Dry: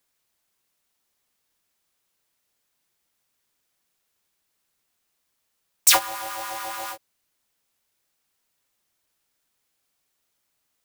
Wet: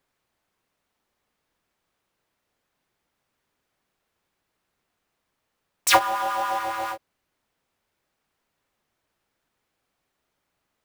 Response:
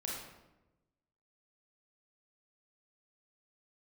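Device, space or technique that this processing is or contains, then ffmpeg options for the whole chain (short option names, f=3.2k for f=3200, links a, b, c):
through cloth: -filter_complex "[0:a]highshelf=f=3.4k:g=-16.5,asettb=1/sr,asplit=3[a][b][c];[a]atrim=end=6.004[d];[b]atrim=start=6:end=6.59,asetpts=PTS-STARTPTS,afade=t=in:d=0.004:c=qsin,afade=t=out:st=0.586:d=0.004:c=qsin,aecho=1:1:5:0.59,atrim=end_sample=26019[e];[c]atrim=start=6.586[f];[d][e]acrossfade=d=0.004:c1=hsin:c2=qsin[g];[g][f]acrossfade=d=0.004:c1=qsin:c2=hsin,volume=6.5dB"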